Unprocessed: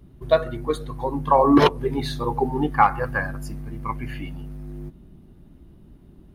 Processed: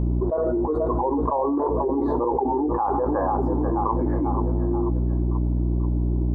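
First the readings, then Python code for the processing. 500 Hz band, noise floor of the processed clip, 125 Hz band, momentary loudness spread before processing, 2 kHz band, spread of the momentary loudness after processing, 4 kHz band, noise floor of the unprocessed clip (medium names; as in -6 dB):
0.0 dB, -24 dBFS, +6.0 dB, 20 LU, -17.0 dB, 1 LU, under -35 dB, -50 dBFS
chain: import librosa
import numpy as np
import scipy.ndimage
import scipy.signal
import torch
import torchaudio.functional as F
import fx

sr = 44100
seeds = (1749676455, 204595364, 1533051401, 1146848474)

y = scipy.signal.sosfilt(scipy.signal.ellip(3, 1.0, 50, [300.0, 960.0], 'bandpass', fs=sr, output='sos'), x)
y = fx.peak_eq(y, sr, hz=630.0, db=-6.5, octaves=1.9)
y = fx.rider(y, sr, range_db=4, speed_s=0.5)
y = fx.add_hum(y, sr, base_hz=60, snr_db=17)
y = fx.echo_feedback(y, sr, ms=486, feedback_pct=50, wet_db=-18)
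y = fx.env_flatten(y, sr, amount_pct=100)
y = y * librosa.db_to_amplitude(-4.5)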